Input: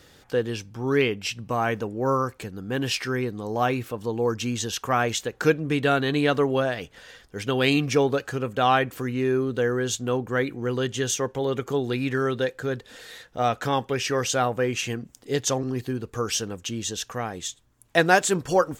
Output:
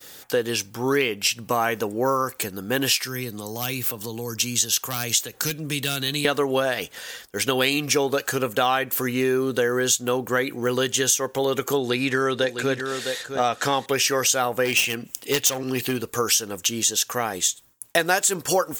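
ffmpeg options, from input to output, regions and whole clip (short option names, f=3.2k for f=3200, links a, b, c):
-filter_complex "[0:a]asettb=1/sr,asplit=3[a][b][c];[a]atrim=end=3.004[d];[b]atrim=start=3:end=6.25,asetpts=PTS-STARTPTS,afade=t=in:d=0.004:c=qsin,afade=t=out:st=3.246:d=0.004:c=qsin,aeval=exprs='clip(val(0),-1,0.2)':c=same,acrossover=split=190|3000[e][f][g];[f]acompressor=threshold=-38dB:ratio=6:attack=3.2:release=140:knee=2.83:detection=peak[h];[e][h][g]amix=inputs=3:normalize=0[i];[c]atrim=start=6.246[j];[d][i]acrossfade=d=0.004:c1=hsin:c2=qsin[k];[k][j]acrossfade=d=0.004:c1=qsin:c2=hsin,asettb=1/sr,asplit=3[l][m][n];[l]atrim=end=11.774[o];[m]atrim=start=11.77:end=13.86,asetpts=PTS-STARTPTS,afade=t=in:d=0.004:c=qsin,afade=t=out:st=2.086:d=0.004:c=qsin,lowpass=8.4k,aecho=1:1:658:0.316,atrim=end_sample=92169[p];[n]atrim=start=13.856[q];[o][p]acrossfade=d=0.004:c1=hsin:c2=qsin[r];[r][q]acrossfade=d=0.004:c1=qsin:c2=hsin,asettb=1/sr,asplit=3[s][t][u];[s]atrim=end=14.654[v];[t]atrim=start=14.65:end=16.01,asetpts=PTS-STARTPTS,afade=t=in:d=0.004:c=qsin,afade=t=out:st=1.356:d=0.004:c=qsin,equalizer=f=2.7k:w=2.1:g=10,aeval=exprs='clip(val(0),-1,0.0794)':c=same[w];[u]atrim=start=16.006[x];[v][w]acrossfade=d=0.004:c1=hsin:c2=qsin[y];[y][x]acrossfade=d=0.004:c1=qsin:c2=hsin,aemphasis=mode=production:type=bsi,agate=range=-33dB:threshold=-47dB:ratio=3:detection=peak,acompressor=threshold=-26dB:ratio=4,volume=7.5dB"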